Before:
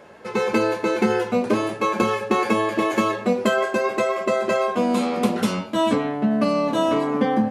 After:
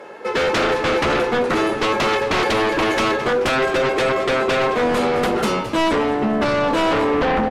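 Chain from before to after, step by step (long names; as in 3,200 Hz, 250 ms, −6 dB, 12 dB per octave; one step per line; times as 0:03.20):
high-pass filter 250 Hz 12 dB per octave
high-shelf EQ 3,700 Hz −7 dB
comb filter 2.3 ms, depth 34%
sine wavefolder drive 13 dB, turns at −7 dBFS
on a send: echo with shifted repeats 216 ms, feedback 49%, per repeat −95 Hz, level −13 dB
on the sum: level −8 dB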